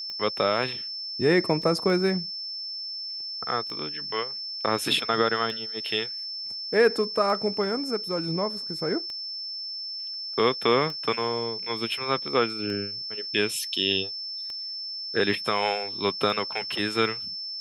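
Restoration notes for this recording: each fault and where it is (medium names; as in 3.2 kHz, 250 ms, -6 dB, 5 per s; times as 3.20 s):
tick 33 1/3 rpm -23 dBFS
whine 5.3 kHz -32 dBFS
1.62 s: dropout 4 ms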